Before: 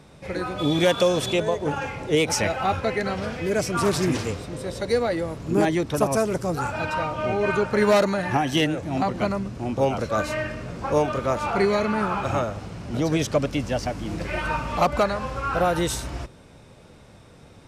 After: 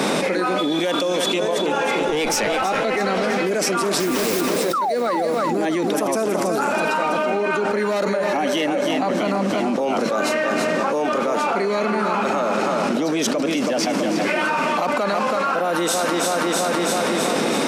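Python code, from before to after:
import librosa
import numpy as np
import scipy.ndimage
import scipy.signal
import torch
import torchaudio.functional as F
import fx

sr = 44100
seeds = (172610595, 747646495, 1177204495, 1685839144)

y = scipy.signal.sosfilt(scipy.signal.butter(6, 200.0, 'highpass', fs=sr, output='sos'), x)
y = fx.tube_stage(y, sr, drive_db=17.0, bias=0.6, at=(2.02, 2.63))
y = fx.quant_dither(y, sr, seeds[0], bits=6, dither='triangular', at=(4.0, 4.41))
y = fx.spec_paint(y, sr, seeds[1], shape='fall', start_s=4.73, length_s=0.22, low_hz=570.0, high_hz=1400.0, level_db=-17.0)
y = fx.small_body(y, sr, hz=(570.0, 2200.0), ring_ms=85, db=14, at=(8.12, 8.9))
y = fx.echo_feedback(y, sr, ms=327, feedback_pct=46, wet_db=-9)
y = fx.env_flatten(y, sr, amount_pct=100)
y = F.gain(torch.from_numpy(y), -6.0).numpy()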